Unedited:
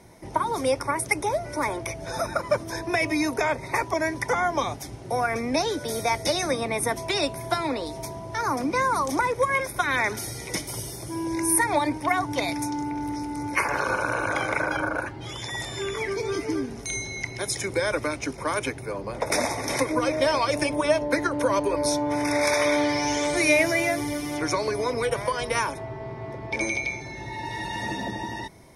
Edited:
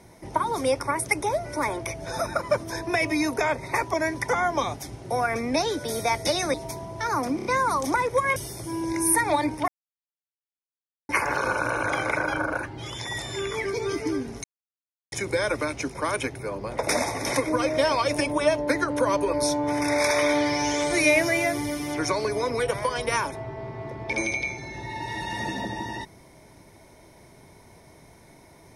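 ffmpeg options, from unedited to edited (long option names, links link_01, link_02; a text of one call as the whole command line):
ffmpeg -i in.wav -filter_complex "[0:a]asplit=10[link_01][link_02][link_03][link_04][link_05][link_06][link_07][link_08][link_09][link_10];[link_01]atrim=end=6.542[link_11];[link_02]atrim=start=7.878:end=8.732[link_12];[link_03]atrim=start=8.698:end=8.732[link_13];[link_04]atrim=start=8.698:end=8.732[link_14];[link_05]atrim=start=8.698:end=9.612[link_15];[link_06]atrim=start=10.788:end=12.11,asetpts=PTS-STARTPTS,afade=type=out:start_time=1.318:duration=0.004:curve=hsin[link_16];[link_07]atrim=start=12.11:end=13.52,asetpts=PTS-STARTPTS,volume=0[link_17];[link_08]atrim=start=13.52:end=16.87,asetpts=PTS-STARTPTS,afade=type=in:duration=0.004:curve=hsin,afade=type=out:start_time=3.346:duration=0.004:curve=hsin[link_18];[link_09]atrim=start=16.87:end=17.55,asetpts=PTS-STARTPTS,volume=0[link_19];[link_10]atrim=start=17.55,asetpts=PTS-STARTPTS,afade=type=in:duration=0.004:curve=hsin[link_20];[link_11][link_12]acrossfade=duration=0.004:curve1=hsin:curve2=hsin[link_21];[link_21][link_13]acrossfade=duration=0.004:curve1=hsin:curve2=hsin[link_22];[link_22][link_14]acrossfade=duration=0.004:curve1=hsin:curve2=hsin[link_23];[link_23][link_15]acrossfade=duration=0.004:curve1=hsin:curve2=hsin[link_24];[link_16][link_17][link_18][link_19][link_20]concat=n=5:v=0:a=1[link_25];[link_24][link_25]acrossfade=duration=0.004:curve1=hsin:curve2=hsin" out.wav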